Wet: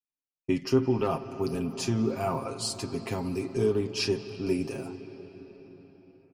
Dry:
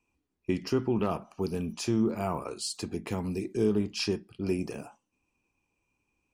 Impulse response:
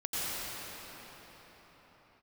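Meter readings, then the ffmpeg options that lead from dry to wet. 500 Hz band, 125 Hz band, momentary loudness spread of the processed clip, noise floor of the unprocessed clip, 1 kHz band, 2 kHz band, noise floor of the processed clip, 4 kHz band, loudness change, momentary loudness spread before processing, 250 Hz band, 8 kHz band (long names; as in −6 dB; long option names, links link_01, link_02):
+3.0 dB, +2.0 dB, 16 LU, −80 dBFS, +2.5 dB, +2.5 dB, below −85 dBFS, +2.0 dB, +1.5 dB, 7 LU, +0.5 dB, +2.0 dB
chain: -filter_complex "[0:a]agate=range=-33dB:threshold=-53dB:ratio=3:detection=peak,aecho=1:1:7.5:0.74,asplit=2[link_01][link_02];[1:a]atrim=start_sample=2205,lowpass=4800,adelay=68[link_03];[link_02][link_03]afir=irnorm=-1:irlink=0,volume=-19.5dB[link_04];[link_01][link_04]amix=inputs=2:normalize=0"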